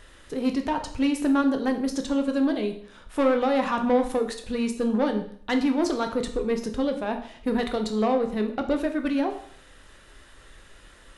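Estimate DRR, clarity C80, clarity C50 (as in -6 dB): 5.0 dB, 13.5 dB, 10.0 dB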